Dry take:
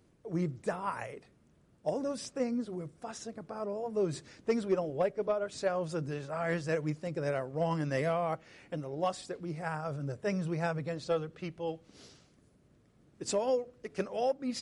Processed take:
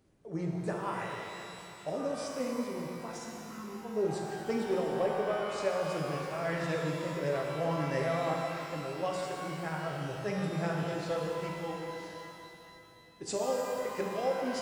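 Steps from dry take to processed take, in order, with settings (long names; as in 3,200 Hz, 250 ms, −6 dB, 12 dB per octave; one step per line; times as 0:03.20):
time-frequency box erased 0:03.12–0:03.85, 400–890 Hz
reverb with rising layers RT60 2.8 s, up +12 semitones, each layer −8 dB, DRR −1 dB
level −3.5 dB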